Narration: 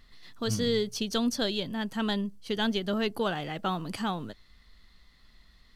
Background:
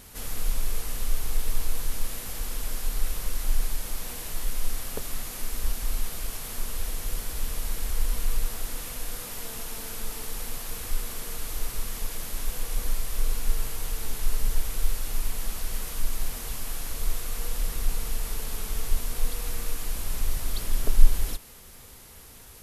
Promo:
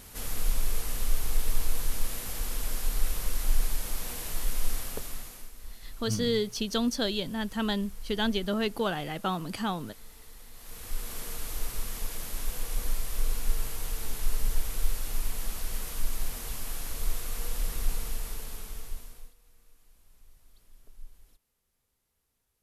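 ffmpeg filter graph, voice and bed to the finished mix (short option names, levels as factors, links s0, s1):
-filter_complex "[0:a]adelay=5600,volume=1[s0];[1:a]volume=4.73,afade=t=out:st=4.74:d=0.78:silence=0.158489,afade=t=in:st=10.53:d=0.65:silence=0.199526,afade=t=out:st=17.9:d=1.44:silence=0.0398107[s1];[s0][s1]amix=inputs=2:normalize=0"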